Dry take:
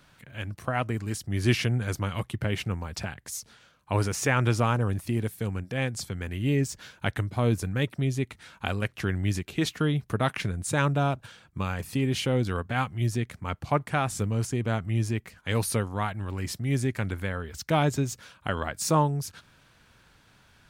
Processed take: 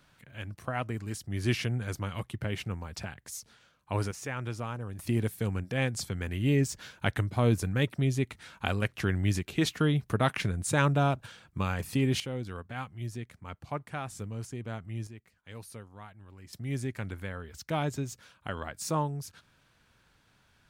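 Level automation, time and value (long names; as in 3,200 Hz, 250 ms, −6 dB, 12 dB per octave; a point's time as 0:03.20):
−5 dB
from 0:04.11 −12 dB
from 0:04.99 −0.5 dB
from 0:12.20 −10.5 dB
from 0:15.07 −18.5 dB
from 0:16.53 −7 dB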